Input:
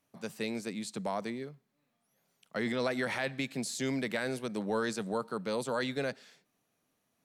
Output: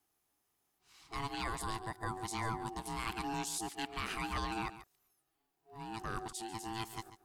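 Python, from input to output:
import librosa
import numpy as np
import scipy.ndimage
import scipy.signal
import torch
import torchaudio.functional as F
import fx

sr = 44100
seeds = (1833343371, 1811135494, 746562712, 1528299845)

p1 = np.flip(x).copy()
p2 = p1 * np.sin(2.0 * np.pi * 560.0 * np.arange(len(p1)) / sr)
p3 = fx.high_shelf(p2, sr, hz=7300.0, db=11.0)
p4 = p3 + fx.echo_single(p3, sr, ms=141, db=-14.0, dry=0)
y = p4 * 10.0 ** (-3.0 / 20.0)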